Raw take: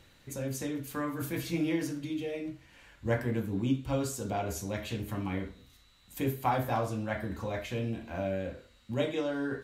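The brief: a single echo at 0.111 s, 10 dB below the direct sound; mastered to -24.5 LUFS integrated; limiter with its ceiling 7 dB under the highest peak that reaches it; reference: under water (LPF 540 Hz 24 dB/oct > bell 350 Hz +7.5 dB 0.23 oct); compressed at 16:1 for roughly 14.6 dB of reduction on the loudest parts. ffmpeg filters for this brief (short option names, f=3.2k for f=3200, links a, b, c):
-af "acompressor=threshold=-38dB:ratio=16,alimiter=level_in=11dB:limit=-24dB:level=0:latency=1,volume=-11dB,lowpass=f=540:w=0.5412,lowpass=f=540:w=1.3066,equalizer=f=350:t=o:w=0.23:g=7.5,aecho=1:1:111:0.316,volume=20dB"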